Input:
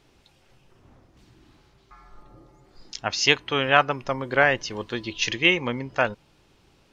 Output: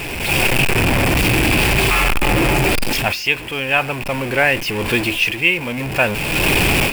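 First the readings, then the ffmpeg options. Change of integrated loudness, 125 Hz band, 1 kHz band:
+6.5 dB, +16.0 dB, +6.0 dB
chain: -af "aeval=exprs='val(0)+0.5*0.0891*sgn(val(0))':channel_layout=same,equalizer=frequency=1250:width_type=o:width=0.33:gain=-6,equalizer=frequency=2500:width_type=o:width=0.33:gain=12,equalizer=frequency=4000:width_type=o:width=0.33:gain=-7,equalizer=frequency=6300:width_type=o:width=0.33:gain=-10,dynaudnorm=framelen=190:gausssize=3:maxgain=13dB,volume=-1dB"

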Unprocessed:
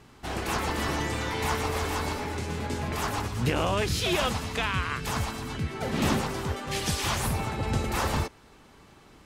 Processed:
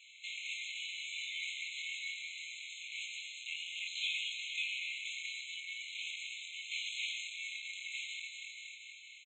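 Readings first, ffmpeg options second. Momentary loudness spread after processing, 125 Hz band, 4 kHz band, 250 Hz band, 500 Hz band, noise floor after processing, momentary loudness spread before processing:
8 LU, below −40 dB, −5.0 dB, below −40 dB, below −40 dB, −54 dBFS, 6 LU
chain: -filter_complex "[0:a]asplit=2[link_01][link_02];[link_02]adelay=24,volume=-4dB[link_03];[link_01][link_03]amix=inputs=2:normalize=0,aecho=1:1:236|472|708|944|1180|1416:0.237|0.135|0.077|0.0439|0.025|0.0143,aresample=16000,asoftclip=type=tanh:threshold=-26.5dB,aresample=44100,equalizer=frequency=3000:width=2.4:gain=-4,acrossover=split=3200[link_04][link_05];[link_05]acompressor=threshold=-51dB:ratio=4:attack=1:release=60[link_06];[link_04][link_06]amix=inputs=2:normalize=0,highshelf=frequency=3800:gain=-9.5,acrossover=split=160|3000[link_07][link_08][link_09];[link_08]acompressor=threshold=-42dB:ratio=6[link_10];[link_07][link_10][link_09]amix=inputs=3:normalize=0,afftfilt=real='re*eq(mod(floor(b*sr/1024/2100),2),1)':imag='im*eq(mod(floor(b*sr/1024/2100),2),1)':win_size=1024:overlap=0.75,volume=12dB"

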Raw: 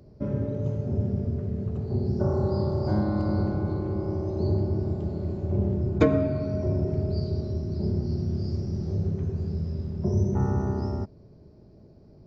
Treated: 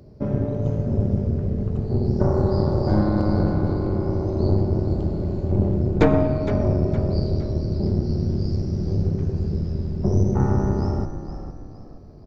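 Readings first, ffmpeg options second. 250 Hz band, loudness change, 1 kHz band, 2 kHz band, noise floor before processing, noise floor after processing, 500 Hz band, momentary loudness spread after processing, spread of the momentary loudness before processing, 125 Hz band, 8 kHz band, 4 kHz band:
+5.0 dB, +5.0 dB, +6.5 dB, +5.5 dB, −52 dBFS, −40 dBFS, +5.0 dB, 6 LU, 5 LU, +5.0 dB, can't be measured, +5.5 dB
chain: -filter_complex "[0:a]aeval=exprs='(tanh(6.31*val(0)+0.7)-tanh(0.7))/6.31':channel_layout=same,asplit=5[link_01][link_02][link_03][link_04][link_05];[link_02]adelay=463,afreqshift=-46,volume=-10dB[link_06];[link_03]adelay=926,afreqshift=-92,volume=-18dB[link_07];[link_04]adelay=1389,afreqshift=-138,volume=-25.9dB[link_08];[link_05]adelay=1852,afreqshift=-184,volume=-33.9dB[link_09];[link_01][link_06][link_07][link_08][link_09]amix=inputs=5:normalize=0,volume=8.5dB"

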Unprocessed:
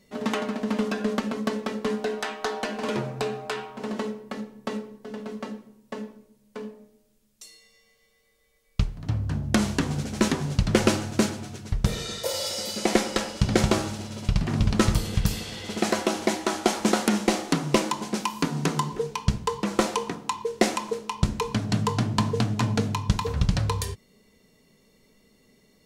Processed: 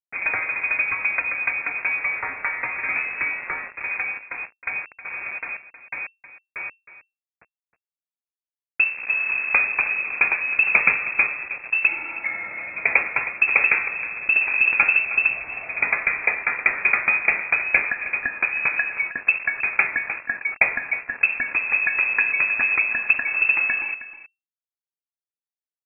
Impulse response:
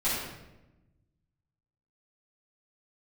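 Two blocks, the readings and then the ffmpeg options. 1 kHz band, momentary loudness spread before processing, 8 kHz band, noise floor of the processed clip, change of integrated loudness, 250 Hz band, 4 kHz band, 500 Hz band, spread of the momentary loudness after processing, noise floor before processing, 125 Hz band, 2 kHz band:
−2.0 dB, 12 LU, below −40 dB, below −85 dBFS, +6.5 dB, −21.5 dB, below −35 dB, −12.0 dB, 13 LU, −64 dBFS, below −25 dB, +17.0 dB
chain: -af "acrusher=bits=5:mix=0:aa=0.000001,lowpass=frequency=2300:width_type=q:width=0.5098,lowpass=frequency=2300:width_type=q:width=0.6013,lowpass=frequency=2300:width_type=q:width=0.9,lowpass=frequency=2300:width_type=q:width=2.563,afreqshift=-2700,aecho=1:1:315:0.188,volume=3dB"

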